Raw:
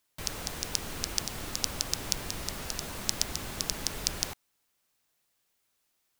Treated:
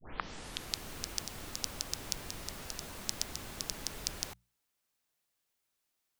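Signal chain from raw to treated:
turntable start at the beginning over 0.90 s
mains-hum notches 60/120/180 Hz
level −6.5 dB

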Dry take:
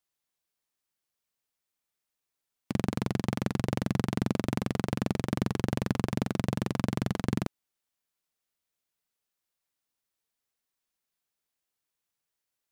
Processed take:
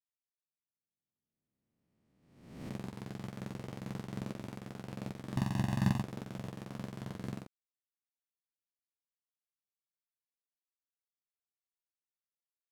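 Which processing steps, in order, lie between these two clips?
peak hold with a rise ahead of every peak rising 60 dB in 2.32 s
0:05.36–0:06.02: comb filter 1.1 ms, depth 88%
expander for the loud parts 2.5 to 1, over −37 dBFS
level −6 dB

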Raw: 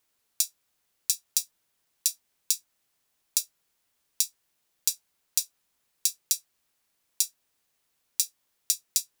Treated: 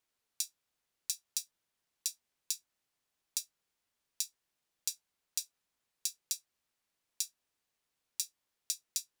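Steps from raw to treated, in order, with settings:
high-shelf EQ 9,400 Hz −7.5 dB
level −7 dB

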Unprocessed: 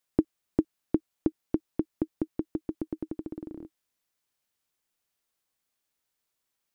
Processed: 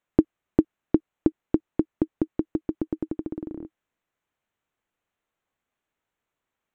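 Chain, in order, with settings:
adaptive Wiener filter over 9 samples
level +5.5 dB

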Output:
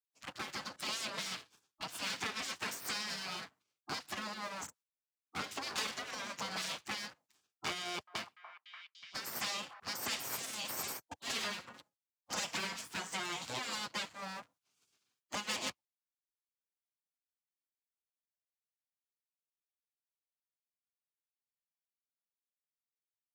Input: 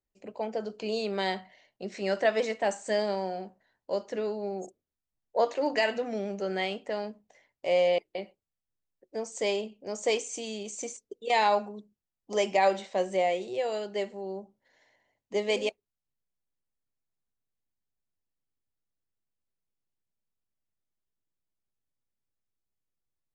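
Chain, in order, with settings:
lower of the sound and its delayed copy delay 7.5 ms
bass and treble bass −9 dB, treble +12 dB
leveller curve on the samples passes 2
high-pass filter 81 Hz 24 dB per octave
high-shelf EQ 6,200 Hz −11 dB
downward compressor 5 to 1, threshold −27 dBFS, peak gain reduction 10 dB
noise gate −57 dBFS, range −7 dB
gate on every frequency bin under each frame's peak −15 dB weak
0:07.78–0:09.80: echo through a band-pass that steps 292 ms, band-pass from 1,000 Hz, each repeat 0.7 octaves, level −11 dB
multiband upward and downward compressor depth 40%

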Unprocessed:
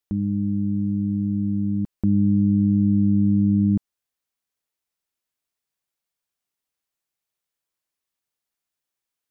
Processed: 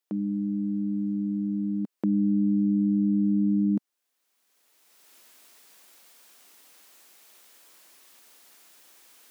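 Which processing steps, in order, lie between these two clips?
camcorder AGC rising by 22 dB per second
high-pass filter 220 Hz 24 dB per octave

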